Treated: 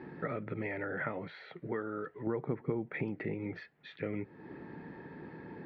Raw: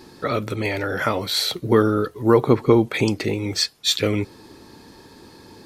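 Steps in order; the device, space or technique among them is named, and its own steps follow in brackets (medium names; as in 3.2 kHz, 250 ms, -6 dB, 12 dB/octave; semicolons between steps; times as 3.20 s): 1.28–2.27 s: bass shelf 380 Hz -11.5 dB; bass amplifier (compression 3:1, threshold -36 dBFS, peak gain reduction 19.5 dB; cabinet simulation 73–2100 Hz, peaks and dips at 88 Hz -9 dB, 160 Hz +9 dB, 1.1 kHz -6 dB, 1.9 kHz +6 dB); trim -2 dB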